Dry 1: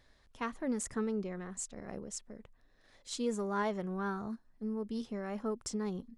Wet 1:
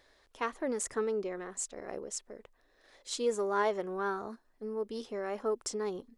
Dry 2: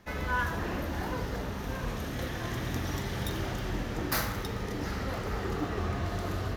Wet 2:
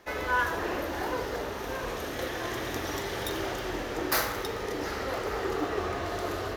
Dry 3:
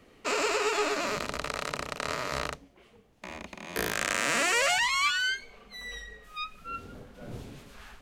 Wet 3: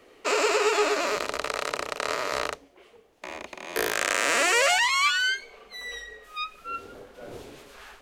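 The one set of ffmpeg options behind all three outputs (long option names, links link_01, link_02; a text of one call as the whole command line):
ffmpeg -i in.wav -af "lowshelf=frequency=270:width_type=q:width=1.5:gain=-10,volume=3.5dB" out.wav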